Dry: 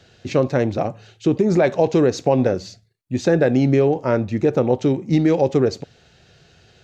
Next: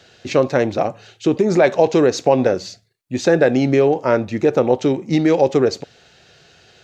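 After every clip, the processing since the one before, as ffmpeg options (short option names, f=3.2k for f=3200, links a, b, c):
-af "lowshelf=f=220:g=-11.5,volume=5dB"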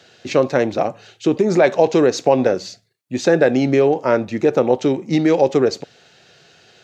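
-af "highpass=120"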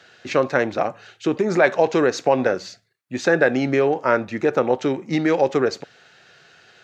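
-af "equalizer=f=1.5k:w=1:g=9,volume=-5dB"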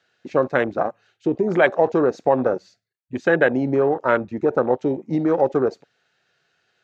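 -af "afwtdn=0.0631"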